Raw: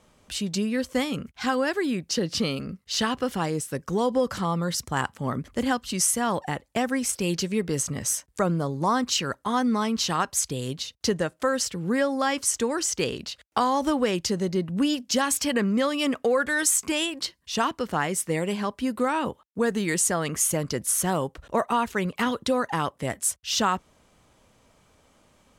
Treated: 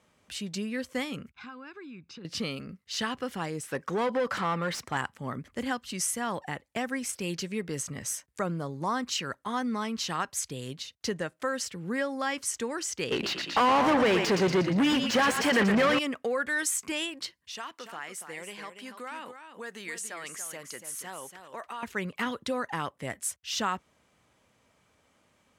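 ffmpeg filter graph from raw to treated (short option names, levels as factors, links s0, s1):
-filter_complex "[0:a]asettb=1/sr,asplit=3[s0][s1][s2];[s0]atrim=end=1.304[s3];[s1]atrim=start=1.3:end=2.25,asetpts=PTS-STARTPTS,afade=t=in:d=0.004:c=qsin,afade=t=out:st=0.946:d=0.004:c=qsin,lowpass=3600,aecho=1:1:0.8:0.69,atrim=end_sample=41895,acompressor=threshold=0.00794:ratio=2.5:attack=3.2:release=140:knee=1:detection=peak[s4];[s2]atrim=start=2.246[s5];[s3][s4]acrossfade=d=0.004:c1=hsin:c2=qsin[s6];[s6][s5]acrossfade=d=0.004:c1=qsin:c2=hsin,asettb=1/sr,asplit=3[s7][s8][s9];[s7]atrim=end=3.634[s10];[s8]atrim=start=3.63:end=4.97,asetpts=PTS-STARTPTS,afade=t=in:d=0.004:c=qsin,afade=t=out:st=1.336:d=0.004:c=qsin,asplit=2[s11][s12];[s12]highpass=f=720:p=1,volume=8.91,asoftclip=type=tanh:threshold=0.224[s13];[s11][s13]amix=inputs=2:normalize=0,lowpass=f=2700:p=1,volume=0.501,equalizer=f=4900:t=o:w=2.2:g=-2.5[s14];[s9]atrim=start=4.966[s15];[s10][s14]acrossfade=d=0.004:c1=hsin:c2=qsin[s16];[s16][s15]acrossfade=d=0.004:c1=qsin:c2=hsin,asettb=1/sr,asplit=3[s17][s18][s19];[s17]atrim=end=13.114[s20];[s18]atrim=start=13.11:end=15.99,asetpts=PTS-STARTPTS,afade=t=in:d=0.004:c=qsin,afade=t=out:st=2.876:d=0.004:c=qsin,asplit=6[s21][s22][s23][s24][s25][s26];[s22]adelay=117,afreqshift=-31,volume=0.266[s27];[s23]adelay=234,afreqshift=-62,volume=0.13[s28];[s24]adelay=351,afreqshift=-93,volume=0.0638[s29];[s25]adelay=468,afreqshift=-124,volume=0.0313[s30];[s26]adelay=585,afreqshift=-155,volume=0.0153[s31];[s21][s27][s28][s29][s30][s31]amix=inputs=6:normalize=0,atrim=end_sample=127008,acompressor=mode=upward:threshold=0.02:ratio=2.5:attack=3.2:release=140:knee=2.83:detection=peak,asplit=2[s32][s33];[s33]highpass=f=720:p=1,volume=31.6,asoftclip=type=tanh:threshold=0.398[s34];[s32][s34]amix=inputs=2:normalize=0,lowpass=f=1600:p=1,volume=0.501[s35];[s19]atrim=start=15.986[s36];[s20][s35]acrossfade=d=0.004:c1=hsin:c2=qsin[s37];[s37][s36]acrossfade=d=0.004:c1=qsin:c2=hsin,asettb=1/sr,asplit=3[s38][s39][s40];[s38]atrim=end=17.514[s41];[s39]atrim=start=17.51:end=21.83,asetpts=PTS-STARTPTS,afade=t=in:d=0.004:c=qsin,afade=t=out:st=4.316:d=0.004:c=qsin,highpass=f=880:p=1,acompressor=threshold=0.0251:ratio=2:attack=3.2:release=140:knee=1:detection=peak,aecho=1:1:286:0.376,atrim=end_sample=190512[s42];[s40]atrim=start=21.826[s43];[s41][s42]acrossfade=d=0.004:c1=hsin:c2=qsin[s44];[s44][s43]acrossfade=d=0.004:c1=qsin:c2=hsin,highpass=70,equalizer=f=2000:t=o:w=1.1:g=5,volume=0.422"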